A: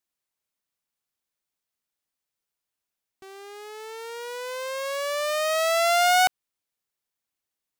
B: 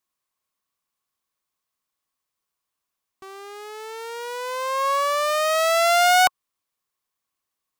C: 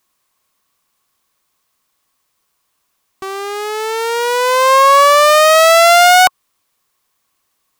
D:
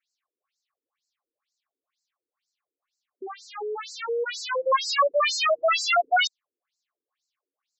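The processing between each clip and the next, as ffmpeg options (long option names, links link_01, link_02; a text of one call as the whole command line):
ffmpeg -i in.wav -af "equalizer=frequency=1100:width_type=o:width=0.21:gain=13,volume=2.5dB" out.wav
ffmpeg -i in.wav -af "alimiter=level_in=17.5dB:limit=-1dB:release=50:level=0:latency=1,volume=-1.5dB" out.wav
ffmpeg -i in.wav -af "aeval=exprs='0.794*(cos(1*acos(clip(val(0)/0.794,-1,1)))-cos(1*PI/2))+0.112*(cos(2*acos(clip(val(0)/0.794,-1,1)))-cos(2*PI/2))+0.0224*(cos(7*acos(clip(val(0)/0.794,-1,1)))-cos(7*PI/2))+0.126*(cos(8*acos(clip(val(0)/0.794,-1,1)))-cos(8*PI/2))':channel_layout=same,bandreject=frequency=950:width=7.1,afftfilt=real='re*between(b*sr/1024,340*pow(5800/340,0.5+0.5*sin(2*PI*2.1*pts/sr))/1.41,340*pow(5800/340,0.5+0.5*sin(2*PI*2.1*pts/sr))*1.41)':imag='im*between(b*sr/1024,340*pow(5800/340,0.5+0.5*sin(2*PI*2.1*pts/sr))/1.41,340*pow(5800/340,0.5+0.5*sin(2*PI*2.1*pts/sr))*1.41)':win_size=1024:overlap=0.75,volume=-6dB" out.wav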